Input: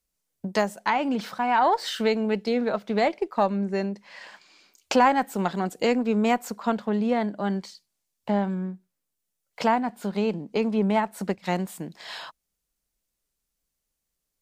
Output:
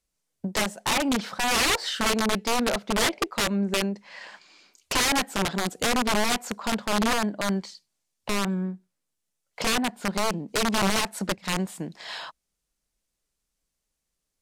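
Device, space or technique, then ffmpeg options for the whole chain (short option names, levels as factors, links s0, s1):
overflowing digital effects unit: -filter_complex "[0:a]asettb=1/sr,asplit=3[s0][s1][s2];[s0]atrim=end=10.484[s3];[s1]atrim=start=10.48:end=11.19,asetpts=PTS-STARTPTS,afade=t=in:d=0.004:c=qsin,afade=t=out:st=0.706:d=0.004:c=qsin,highshelf=f=2300:g=7[s4];[s2]atrim=start=11.186[s5];[s3][s4]acrossfade=d=0.004:c1=hsin:c2=qsin[s6];[s6][s5]acrossfade=d=0.004:c1=qsin:c2=hsin,aeval=exprs='(mod(8.91*val(0)+1,2)-1)/8.91':c=same,lowpass=11000,volume=1.19"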